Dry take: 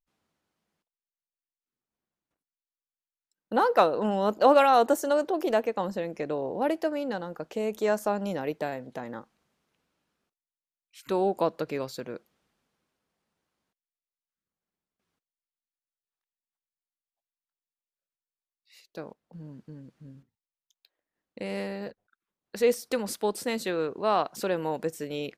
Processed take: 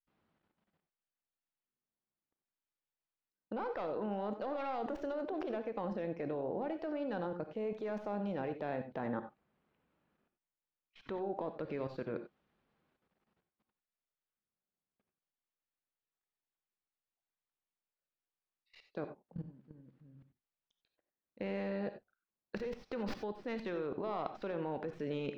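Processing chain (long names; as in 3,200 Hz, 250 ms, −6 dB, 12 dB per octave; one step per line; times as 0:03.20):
stylus tracing distortion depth 0.14 ms
high-frequency loss of the air 290 metres
brickwall limiter −19.5 dBFS, peak gain reduction 11 dB
0:09.07–0:11.64: high-shelf EQ 5,300 Hz −12 dB
output level in coarse steps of 21 dB
reverb whose tail is shaped and stops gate 110 ms rising, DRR 8.5 dB
level +4 dB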